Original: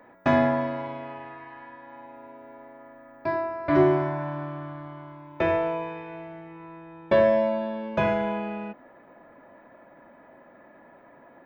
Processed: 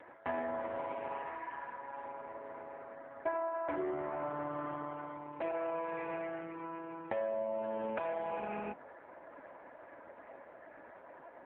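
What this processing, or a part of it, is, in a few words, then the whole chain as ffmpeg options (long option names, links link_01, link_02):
voicemail: -filter_complex "[0:a]asettb=1/sr,asplit=3[link_01][link_02][link_03];[link_01]atrim=end=5.514[link_04];[link_02]atrim=start=5.51:end=6.52,asetpts=PTS-STARTPTS,afade=type=in:duration=0.004:curve=qsin,afade=type=out:start_time=1.006:duration=0.004:curve=qsin,adynamicequalizer=threshold=0.00501:dfrequency=1600:dqfactor=1.3:tfrequency=1600:tqfactor=1.3:attack=5:release=100:ratio=0.375:range=2:mode=boostabove:tftype=bell[link_05];[link_03]atrim=start=6.516[link_06];[link_04][link_05]acrossfade=duration=0.004:curve1=hsin:curve2=qsin[link_07];[link_07][link_06]acrossfade=duration=0.004:curve1=qsin:curve2=hsin,highpass=330,lowpass=3100,acompressor=threshold=-35dB:ratio=10,volume=3dB" -ar 8000 -c:a libopencore_amrnb -b:a 4750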